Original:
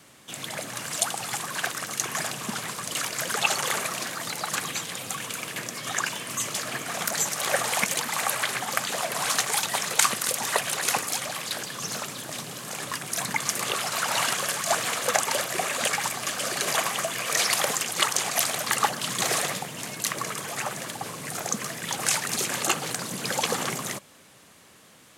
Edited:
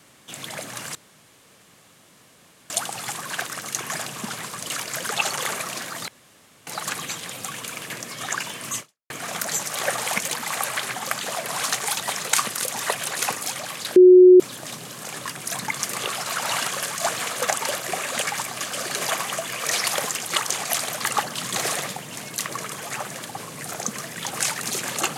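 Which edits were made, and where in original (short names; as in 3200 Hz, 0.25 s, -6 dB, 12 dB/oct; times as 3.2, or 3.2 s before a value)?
0.95 insert room tone 1.75 s
4.33 insert room tone 0.59 s
6.45–6.76 fade out exponential
11.62–12.06 bleep 365 Hz -6 dBFS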